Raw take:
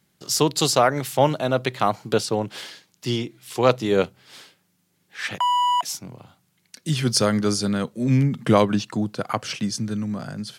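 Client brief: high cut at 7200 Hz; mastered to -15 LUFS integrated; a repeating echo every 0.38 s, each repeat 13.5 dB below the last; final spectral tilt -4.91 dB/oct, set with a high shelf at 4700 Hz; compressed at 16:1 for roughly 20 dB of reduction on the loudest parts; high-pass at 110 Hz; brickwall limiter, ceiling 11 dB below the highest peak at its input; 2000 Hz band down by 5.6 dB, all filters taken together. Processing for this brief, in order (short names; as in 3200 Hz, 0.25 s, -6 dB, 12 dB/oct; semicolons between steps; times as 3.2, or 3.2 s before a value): HPF 110 Hz; LPF 7200 Hz; bell 2000 Hz -6.5 dB; high shelf 4700 Hz -7 dB; compressor 16:1, threshold -33 dBFS; limiter -29.5 dBFS; feedback echo 0.38 s, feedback 21%, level -13.5 dB; gain +25 dB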